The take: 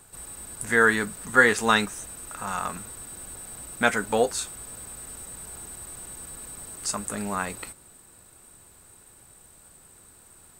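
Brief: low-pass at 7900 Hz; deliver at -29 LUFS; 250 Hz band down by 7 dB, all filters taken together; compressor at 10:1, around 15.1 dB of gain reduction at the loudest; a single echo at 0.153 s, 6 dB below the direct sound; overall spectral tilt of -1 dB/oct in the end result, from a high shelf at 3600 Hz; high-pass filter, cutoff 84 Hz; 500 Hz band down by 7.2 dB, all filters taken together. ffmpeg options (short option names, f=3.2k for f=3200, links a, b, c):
-af "highpass=84,lowpass=7.9k,equalizer=f=250:t=o:g=-7,equalizer=f=500:t=o:g=-6.5,highshelf=f=3.6k:g=6,acompressor=threshold=-27dB:ratio=10,aecho=1:1:153:0.501,volume=3dB"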